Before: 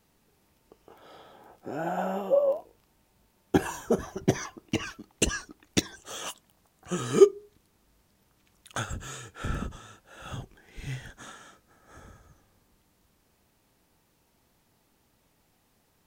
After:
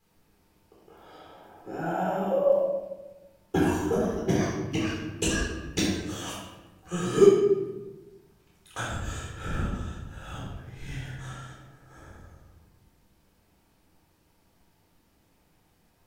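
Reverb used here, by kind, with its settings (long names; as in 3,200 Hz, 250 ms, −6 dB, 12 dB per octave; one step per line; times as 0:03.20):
rectangular room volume 630 cubic metres, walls mixed, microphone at 4 metres
level −8 dB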